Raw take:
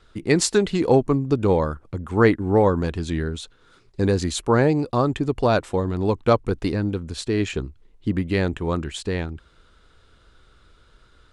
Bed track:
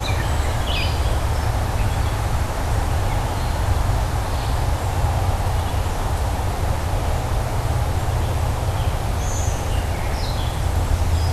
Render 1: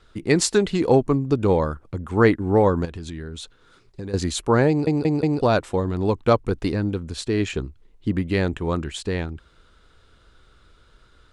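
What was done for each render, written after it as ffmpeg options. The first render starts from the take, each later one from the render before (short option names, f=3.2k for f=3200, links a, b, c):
-filter_complex "[0:a]asettb=1/sr,asplit=3[a][b][c];[a]atrim=end=2.854[d];[b]atrim=start=2.85:end=4.14,asetpts=PTS-STARTPTS,afade=t=in:d=0.004:c=qsin,afade=t=out:st=1.286:d=0.004:c=qsin,acompressor=threshold=-30dB:ratio=5:attack=3.2:release=140:knee=1:detection=peak[e];[c]atrim=start=4.136[f];[d][e]acrossfade=d=0.004:c1=hsin:c2=qsin[g];[g][f]acrossfade=d=0.004:c1=qsin:c2=hsin,asplit=5[h][i][j][k][l];[h]atrim=end=4.872[m];[i]atrim=start=4.688:end=4.872[n];[j]atrim=start=4.688:end=4.872[o];[k]atrim=start=4.688:end=4.872[p];[l]atrim=start=5.408[q];[m][n]acrossfade=d=0.004:c1=hsin:c2=hsin[r];[r][o]acrossfade=d=0.004:c1=hsin:c2=hsin[s];[s][p]acrossfade=d=0.004:c1=hsin:c2=hsin[t];[t][q]acrossfade=d=0.004:c1=hsin:c2=hsin"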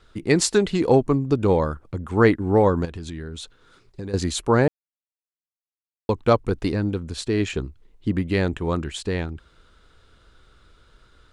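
-filter_complex "[0:a]asplit=3[a][b][c];[a]atrim=end=4.68,asetpts=PTS-STARTPTS,afade=t=out:st=4.676:d=0.004:c=hsin[d];[b]atrim=start=4.68:end=6.09,asetpts=PTS-STARTPTS,volume=0[e];[c]atrim=start=6.09,asetpts=PTS-STARTPTS,afade=t=in:d=0.004:c=hsin[f];[d][e][f]concat=n=3:v=0:a=1"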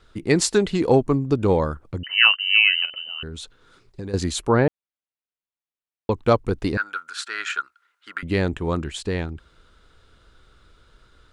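-filter_complex "[0:a]asettb=1/sr,asplit=3[a][b][c];[a]atrim=end=2.034[d];[b]atrim=start=2.03:end=3.23,asetpts=PTS-STARTPTS,afade=t=in:d=0.004:c=qsin,afade=t=out:st=1.196:d=0.004:c=qsin,lowpass=f=2.6k:t=q:w=0.5098,lowpass=f=2.6k:t=q:w=0.6013,lowpass=f=2.6k:t=q:w=0.9,lowpass=f=2.6k:t=q:w=2.563,afreqshift=-3100[e];[c]atrim=start=3.226[f];[d][e]acrossfade=d=0.004:c1=hsin:c2=qsin[g];[g][f]acrossfade=d=0.004:c1=qsin:c2=hsin,asettb=1/sr,asplit=3[h][i][j];[h]atrim=end=4.494[k];[i]atrim=start=4.49:end=6.12,asetpts=PTS-STARTPTS,afade=t=in:d=0.004:c=qsin,afade=t=out:st=1.626:d=0.004:c=qsin,lowpass=f=4k:w=0.5412,lowpass=f=4k:w=1.3066[l];[j]atrim=start=6.116[m];[k][l]acrossfade=d=0.004:c1=hsin:c2=qsin[n];[n][m]acrossfade=d=0.004:c1=qsin:c2=hsin,asettb=1/sr,asplit=3[o][p][q];[o]atrim=end=6.774[r];[p]atrim=start=6.77:end=8.23,asetpts=PTS-STARTPTS,afade=t=in:d=0.004:c=qsin,afade=t=out:st=1.456:d=0.004:c=qsin,highpass=f=1.4k:t=q:w=15[s];[q]atrim=start=8.226[t];[r][s]acrossfade=d=0.004:c1=hsin:c2=qsin[u];[u][t]acrossfade=d=0.004:c1=qsin:c2=hsin"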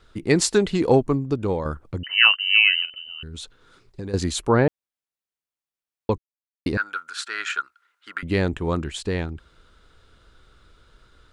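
-filter_complex "[0:a]asplit=3[a][b][c];[a]afade=t=out:st=2.81:d=0.02[d];[b]equalizer=f=780:t=o:w=2.9:g=-12.5,afade=t=in:st=2.81:d=0.02,afade=t=out:st=3.33:d=0.02[e];[c]afade=t=in:st=3.33:d=0.02[f];[d][e][f]amix=inputs=3:normalize=0,asplit=4[g][h][i][j];[g]atrim=end=1.65,asetpts=PTS-STARTPTS,afade=t=out:st=0.92:d=0.73:silence=0.421697[k];[h]atrim=start=1.65:end=6.18,asetpts=PTS-STARTPTS,afade=t=in:d=0.004:c=hsin:silence=0.421697,afade=t=out:st=4.526:d=0.004:c=hsin[l];[i]atrim=start=6.18:end=6.66,asetpts=PTS-STARTPTS,volume=0[m];[j]atrim=start=6.66,asetpts=PTS-STARTPTS,afade=t=in:d=0.004:c=hsin[n];[k][l][m][n]concat=n=4:v=0:a=1"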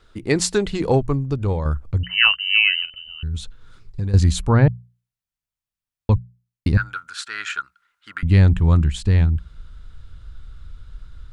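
-af "bandreject=f=60:t=h:w=6,bandreject=f=120:t=h:w=6,bandreject=f=180:t=h:w=6,asubboost=boost=10:cutoff=120"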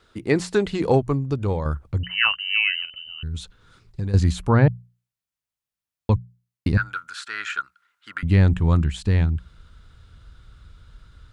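-filter_complex "[0:a]highpass=f=100:p=1,acrossover=split=2600[a][b];[b]acompressor=threshold=-34dB:ratio=4:attack=1:release=60[c];[a][c]amix=inputs=2:normalize=0"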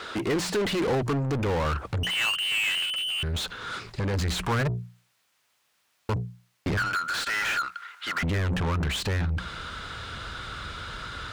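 -filter_complex "[0:a]asoftclip=type=tanh:threshold=-21dB,asplit=2[a][b];[b]highpass=f=720:p=1,volume=32dB,asoftclip=type=tanh:threshold=-21dB[c];[a][c]amix=inputs=2:normalize=0,lowpass=f=3.5k:p=1,volume=-6dB"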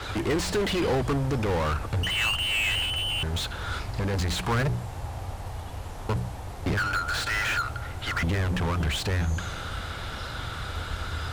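-filter_complex "[1:a]volume=-15dB[a];[0:a][a]amix=inputs=2:normalize=0"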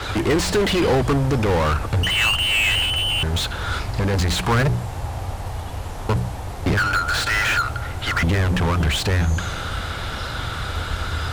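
-af "volume=7dB"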